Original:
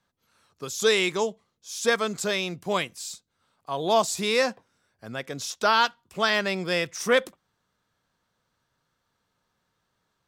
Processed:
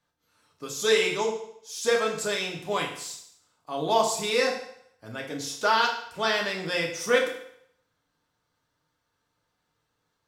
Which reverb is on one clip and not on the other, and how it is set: FDN reverb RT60 0.69 s, low-frequency decay 0.8×, high-frequency decay 0.95×, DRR -1 dB; gain -4.5 dB

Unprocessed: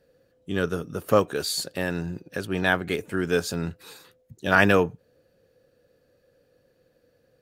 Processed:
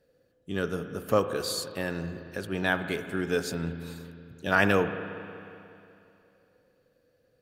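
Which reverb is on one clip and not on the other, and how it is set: spring tank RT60 2.7 s, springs 36/60 ms, chirp 65 ms, DRR 9 dB; gain -4.5 dB

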